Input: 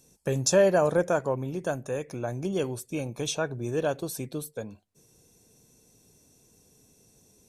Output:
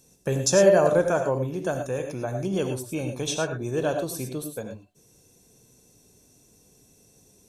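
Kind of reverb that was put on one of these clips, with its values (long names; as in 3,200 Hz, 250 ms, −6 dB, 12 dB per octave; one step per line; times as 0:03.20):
reverb whose tail is shaped and stops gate 130 ms rising, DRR 5.5 dB
level +1.5 dB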